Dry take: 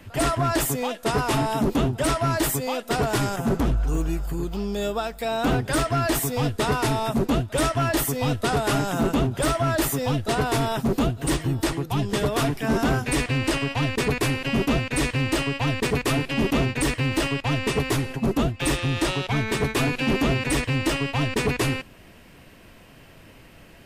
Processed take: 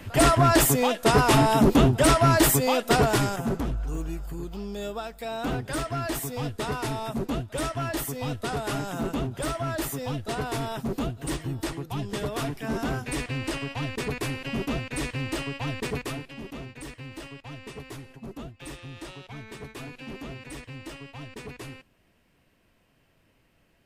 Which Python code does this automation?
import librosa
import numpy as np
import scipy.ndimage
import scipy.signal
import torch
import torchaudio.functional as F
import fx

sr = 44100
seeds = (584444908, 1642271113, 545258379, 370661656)

y = fx.gain(x, sr, db=fx.line((2.92, 4.0), (3.67, -7.0), (15.97, -7.0), (16.37, -17.0)))